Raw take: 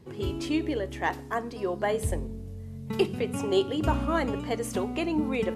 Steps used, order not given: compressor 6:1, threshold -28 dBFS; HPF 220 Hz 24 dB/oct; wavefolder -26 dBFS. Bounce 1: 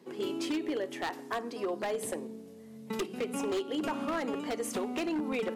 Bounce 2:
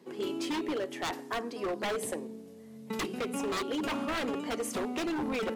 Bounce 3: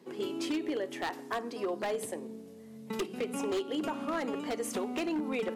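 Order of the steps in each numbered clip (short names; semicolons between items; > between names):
HPF > compressor > wavefolder; HPF > wavefolder > compressor; compressor > HPF > wavefolder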